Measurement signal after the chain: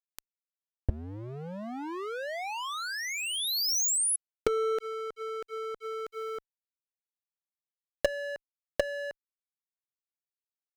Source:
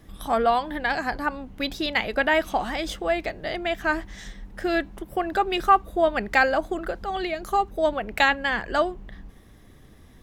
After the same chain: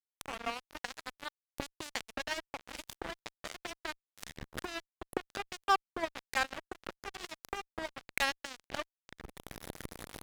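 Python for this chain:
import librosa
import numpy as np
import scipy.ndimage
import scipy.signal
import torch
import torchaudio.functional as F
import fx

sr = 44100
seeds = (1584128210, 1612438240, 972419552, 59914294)

y = fx.recorder_agc(x, sr, target_db=-14.0, rise_db_per_s=55.0, max_gain_db=30)
y = fx.bass_treble(y, sr, bass_db=-1, treble_db=3)
y = fx.fuzz(y, sr, gain_db=11.0, gate_db=-17.0)
y = y * librosa.db_to_amplitude(-4.0)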